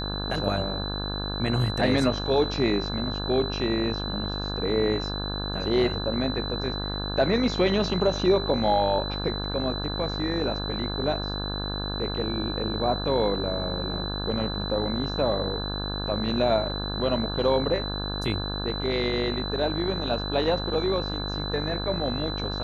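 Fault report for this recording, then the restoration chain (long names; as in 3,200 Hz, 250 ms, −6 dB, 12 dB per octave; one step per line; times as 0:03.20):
mains buzz 50 Hz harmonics 34 −32 dBFS
whistle 4,000 Hz −33 dBFS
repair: notch filter 4,000 Hz, Q 30
hum removal 50 Hz, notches 34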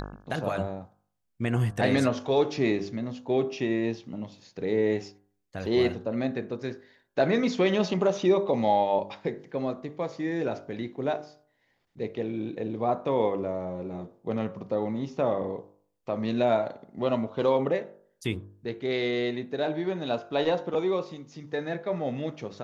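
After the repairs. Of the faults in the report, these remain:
none of them is left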